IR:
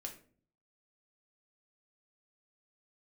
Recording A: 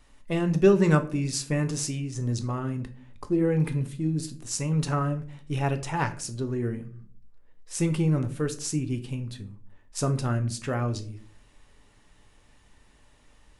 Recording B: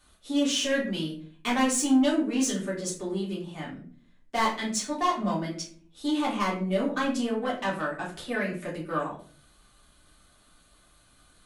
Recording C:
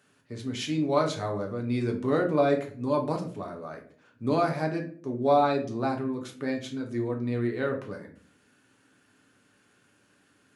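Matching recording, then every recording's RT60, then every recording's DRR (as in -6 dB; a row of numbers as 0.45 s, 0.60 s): C; 0.45 s, 0.45 s, 0.45 s; 7.0 dB, -6.0 dB, 1.5 dB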